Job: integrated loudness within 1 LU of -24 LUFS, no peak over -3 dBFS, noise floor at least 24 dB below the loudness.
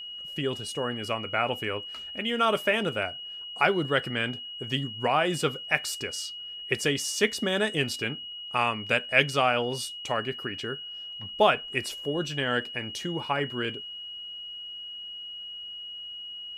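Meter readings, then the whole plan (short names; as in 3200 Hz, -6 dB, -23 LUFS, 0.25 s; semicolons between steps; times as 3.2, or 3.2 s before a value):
steady tone 2900 Hz; tone level -37 dBFS; loudness -28.5 LUFS; peak -5.5 dBFS; loudness target -24.0 LUFS
-> notch 2900 Hz, Q 30; gain +4.5 dB; limiter -3 dBFS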